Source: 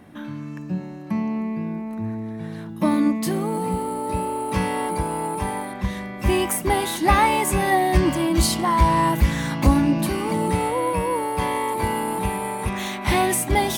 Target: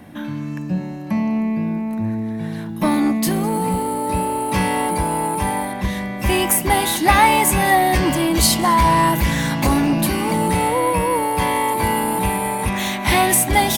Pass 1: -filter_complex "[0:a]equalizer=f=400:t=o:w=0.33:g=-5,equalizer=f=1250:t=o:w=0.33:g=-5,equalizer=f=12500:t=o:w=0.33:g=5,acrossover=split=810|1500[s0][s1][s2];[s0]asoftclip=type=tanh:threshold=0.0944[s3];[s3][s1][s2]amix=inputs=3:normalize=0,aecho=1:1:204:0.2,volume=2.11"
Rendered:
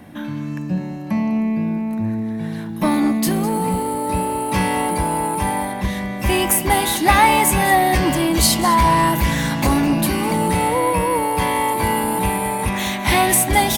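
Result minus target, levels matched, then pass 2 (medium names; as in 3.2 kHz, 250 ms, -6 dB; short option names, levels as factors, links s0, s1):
echo-to-direct +6 dB
-filter_complex "[0:a]equalizer=f=400:t=o:w=0.33:g=-5,equalizer=f=1250:t=o:w=0.33:g=-5,equalizer=f=12500:t=o:w=0.33:g=5,acrossover=split=810|1500[s0][s1][s2];[s0]asoftclip=type=tanh:threshold=0.0944[s3];[s3][s1][s2]amix=inputs=3:normalize=0,aecho=1:1:204:0.1,volume=2.11"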